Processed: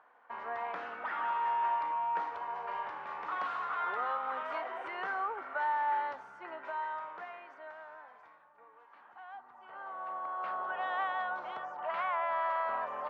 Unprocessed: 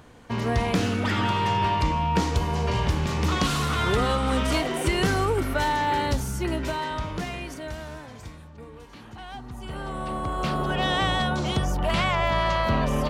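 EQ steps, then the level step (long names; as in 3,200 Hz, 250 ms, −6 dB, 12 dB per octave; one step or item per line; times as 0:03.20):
flat-topped band-pass 1,100 Hz, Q 1.1
−5.5 dB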